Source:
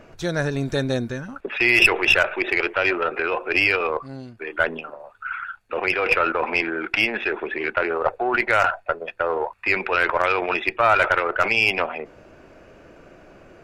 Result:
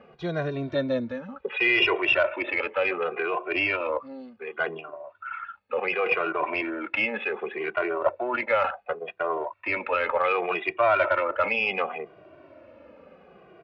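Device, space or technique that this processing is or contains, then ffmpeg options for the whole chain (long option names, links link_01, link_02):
barber-pole flanger into a guitar amplifier: -filter_complex "[0:a]asettb=1/sr,asplit=3[link_01][link_02][link_03];[link_01]atrim=end=1.394[link_04];[link_02]atrim=start=1.39:end=1.96,asetpts=PTS-STARTPTS,afade=type=in:duration=0.004:curve=qsin,afade=type=out:start_time=0.566:duration=0.004:curve=qsin,aecho=1:1:2.1:0.51,atrim=end_sample=25137[link_05];[link_03]atrim=start=1.956[link_06];[link_04][link_05]acrossfade=duration=0.004:curve1=hsin:curve2=qsin[link_07];[link_07][link_06]acrossfade=duration=0.004:curve1=qsin:curve2=hsin,asplit=2[link_08][link_09];[link_09]adelay=2,afreqshift=-0.68[link_10];[link_08][link_10]amix=inputs=2:normalize=1,asoftclip=type=tanh:threshold=-9dB,highpass=99,equalizer=frequency=130:width_type=q:width=4:gain=-5,equalizer=frequency=570:width_type=q:width=4:gain=6,equalizer=frequency=1100:width_type=q:width=4:gain=4,equalizer=frequency=1600:width_type=q:width=4:gain=-4,lowpass=frequency=3600:width=0.5412,lowpass=frequency=3600:width=1.3066,volume=-2dB"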